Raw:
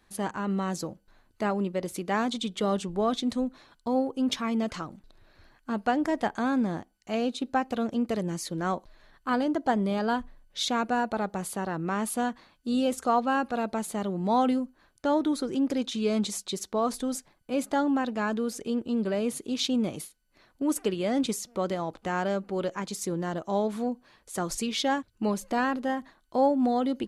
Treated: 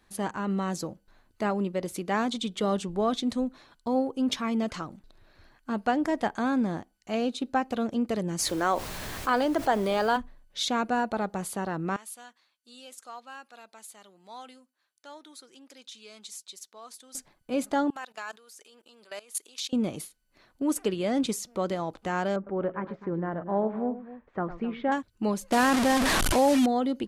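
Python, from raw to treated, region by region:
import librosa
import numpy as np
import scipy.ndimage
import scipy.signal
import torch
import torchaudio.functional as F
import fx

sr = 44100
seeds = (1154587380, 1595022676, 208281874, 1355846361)

y = fx.highpass(x, sr, hz=390.0, slope=12, at=(8.38, 10.16), fade=0.02)
y = fx.dmg_noise_colour(y, sr, seeds[0], colour='pink', level_db=-55.0, at=(8.38, 10.16), fade=0.02)
y = fx.env_flatten(y, sr, amount_pct=50, at=(8.38, 10.16), fade=0.02)
y = fx.chain(y, sr, fx.lowpass(hz=3400.0, slope=6),
    fx.differentiator(), at=(11.96, 17.15))
y = fx.chain(y, sr, fx.highpass(hz=900.0, slope=12),
    fx.level_steps(step_db=19),
    fx.high_shelf(hz=4500.0, db=10.0), at=(17.9, 19.73))
y = fx.chain(y, sr, fx.lowpass(hz=1900.0, slope=24),
    fx.echo_multitap(ms=(105, 259), db=(-14.0, -15.0)), at=(22.36, 24.92))
y = fx.chain(y, sr, fx.delta_mod(bps=64000, step_db=-28.0),
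    fx.env_flatten(amount_pct=70), at=(25.52, 26.66))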